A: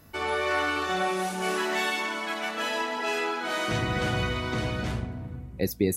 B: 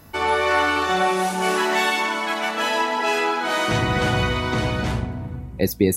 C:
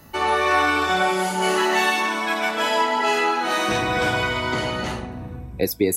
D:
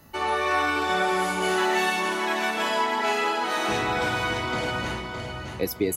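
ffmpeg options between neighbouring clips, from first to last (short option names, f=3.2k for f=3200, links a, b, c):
-af "equalizer=f=890:t=o:w=0.34:g=5,volume=6.5dB"
-filter_complex "[0:a]afftfilt=real='re*pow(10,7/40*sin(2*PI*(1.7*log(max(b,1)*sr/1024/100)/log(2)-(-0.62)*(pts-256)/sr)))':imag='im*pow(10,7/40*sin(2*PI*(1.7*log(max(b,1)*sr/1024/100)/log(2)-(-0.62)*(pts-256)/sr)))':win_size=1024:overlap=0.75,acrossover=split=270|1900[a][b][c];[a]acompressor=threshold=-31dB:ratio=6[d];[d][b][c]amix=inputs=3:normalize=0"
-af "aecho=1:1:615|1230|1845:0.501|0.13|0.0339,volume=-5dB"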